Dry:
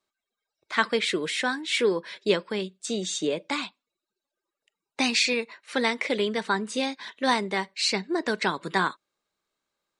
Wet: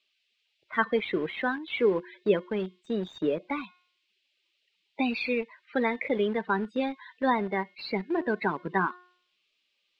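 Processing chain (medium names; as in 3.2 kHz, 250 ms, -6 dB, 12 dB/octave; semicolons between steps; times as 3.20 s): de-hum 359.6 Hz, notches 11; loudest bins only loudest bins 32; in parallel at -10.5 dB: bit crusher 5-bit; on the sum: band noise 2.5–7.9 kHz -61 dBFS; distance through air 420 m; trim -1.5 dB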